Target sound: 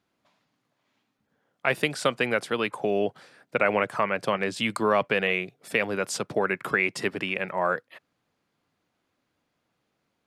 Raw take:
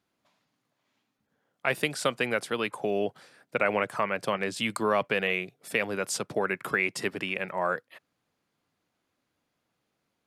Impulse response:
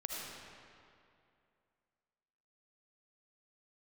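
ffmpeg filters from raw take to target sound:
-af "highshelf=f=7400:g=-7.5,volume=1.41"

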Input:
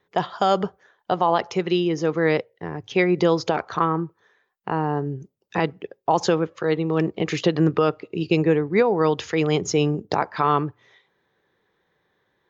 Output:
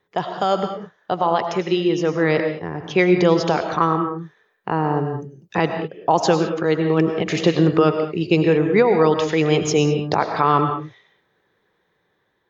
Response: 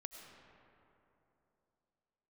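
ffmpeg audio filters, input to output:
-filter_complex "[1:a]atrim=start_sample=2205,afade=t=out:st=0.27:d=0.01,atrim=end_sample=12348[s0];[0:a][s0]afir=irnorm=-1:irlink=0,dynaudnorm=f=730:g=5:m=1.5,volume=1.78"

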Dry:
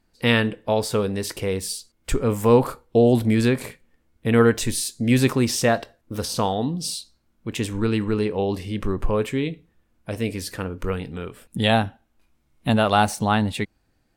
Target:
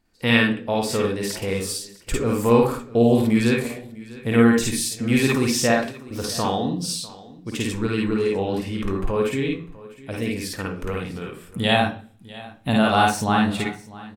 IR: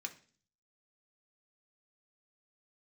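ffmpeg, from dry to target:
-filter_complex "[0:a]aecho=1:1:650:0.106,asplit=2[s0][s1];[1:a]atrim=start_sample=2205,adelay=52[s2];[s1][s2]afir=irnorm=-1:irlink=0,volume=1.58[s3];[s0][s3]amix=inputs=2:normalize=0,volume=0.75"

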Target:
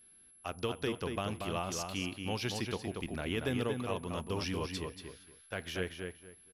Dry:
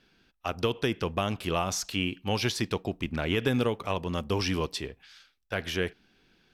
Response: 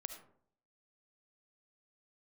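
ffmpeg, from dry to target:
-filter_complex "[0:a]asplit=2[s0][s1];[s1]adelay=234,lowpass=f=3300:p=1,volume=0.596,asplit=2[s2][s3];[s3]adelay=234,lowpass=f=3300:p=1,volume=0.23,asplit=2[s4][s5];[s5]adelay=234,lowpass=f=3300:p=1,volume=0.23[s6];[s0][s2][s4][s6]amix=inputs=4:normalize=0,aeval=exprs='val(0)+0.00316*sin(2*PI*11000*n/s)':c=same,volume=0.398"

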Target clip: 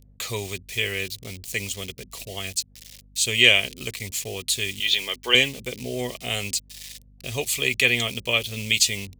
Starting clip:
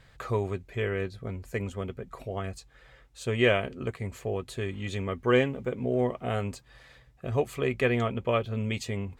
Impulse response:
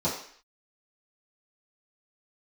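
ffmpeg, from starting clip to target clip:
-filter_complex "[0:a]asettb=1/sr,asplit=3[s0][s1][s2];[s0]atrim=end=4.804[s3];[s1]atrim=start=4.8:end=5.35,asetpts=PTS-STARTPTS,afade=t=in:d=0.004:c=qsin,afade=t=out:st=0.546:d=0.004:c=qsin,highpass=360,equalizer=f=900:t=q:w=4:g=5,equalizer=f=1600:t=q:w=4:g=4,equalizer=f=3300:t=q:w=4:g=6,lowpass=f=5100:w=0.5412,lowpass=f=5100:w=1.3066[s4];[s2]atrim=start=5.346[s5];[s3][s4]acrossfade=d=0.004:c1=hsin:c2=qsin[s6];[s6][s5]acrossfade=d=0.004:c1=qsin:c2=hsin,acrossover=split=590[s7][s8];[s8]aeval=exprs='val(0)*gte(abs(val(0)),0.00251)':c=same[s9];[s7][s9]amix=inputs=2:normalize=0,aeval=exprs='val(0)+0.00355*(sin(2*PI*50*n/s)+sin(2*PI*2*50*n/s)/2+sin(2*PI*3*50*n/s)/3+sin(2*PI*4*50*n/s)/4+sin(2*PI*5*50*n/s)/5)':c=same,aexciter=amount=13.3:drive=4.6:freq=2200,volume=0.708"

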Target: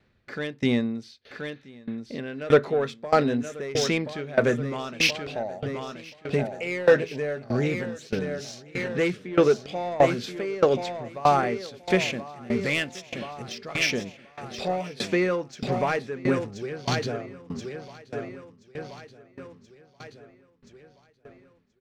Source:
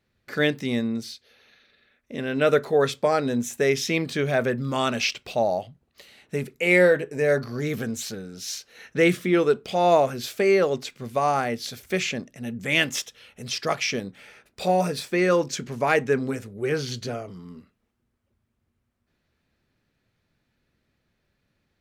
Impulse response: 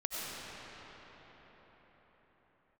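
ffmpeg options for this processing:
-filter_complex "[0:a]asplit=2[s0][s1];[s1]acompressor=threshold=0.02:ratio=6,volume=0.841[s2];[s0][s2]amix=inputs=2:normalize=0,asettb=1/sr,asplit=3[s3][s4][s5];[s3]atrim=end=12.004[s6];[s4]atrim=start=12:end=13.49,asetpts=PTS-STARTPTS,afade=t=in:d=0.004:c=qsin,afade=t=out:st=1.486:d=0.004:c=qsin,acrusher=bits=4:mode=log:mix=0:aa=0.000001[s7];[s5]atrim=start=13.486[s8];[s6][s7]acrossfade=d=0.004:c1=hsin:c2=qsin[s9];[s9][s8]acrossfade=d=0.004:c1=qsin:c2=hsin,adynamicsmooth=sensitivity=1:basefreq=5200,asoftclip=type=tanh:threshold=0.282,aecho=1:1:1028|2056|3084|4112|5140|6168:0.299|0.158|0.0839|0.0444|0.0236|0.0125,aeval=exprs='val(0)*pow(10,-21*if(lt(mod(1.6*n/s,1),2*abs(1.6)/1000),1-mod(1.6*n/s,1)/(2*abs(1.6)/1000),(mod(1.6*n/s,1)-2*abs(1.6)/1000)/(1-2*abs(1.6)/1000))/20)':c=same,volume=1.78"

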